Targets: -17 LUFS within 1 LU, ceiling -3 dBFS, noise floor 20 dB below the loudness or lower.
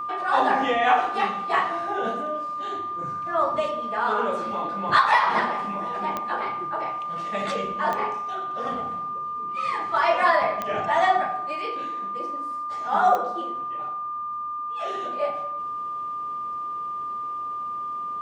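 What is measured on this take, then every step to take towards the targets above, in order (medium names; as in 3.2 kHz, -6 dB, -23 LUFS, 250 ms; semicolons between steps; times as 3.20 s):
clicks found 4; steady tone 1.2 kHz; tone level -28 dBFS; loudness -25.5 LUFS; peak level -7.5 dBFS; loudness target -17.0 LUFS
-> de-click; band-stop 1.2 kHz, Q 30; trim +8.5 dB; peak limiter -3 dBFS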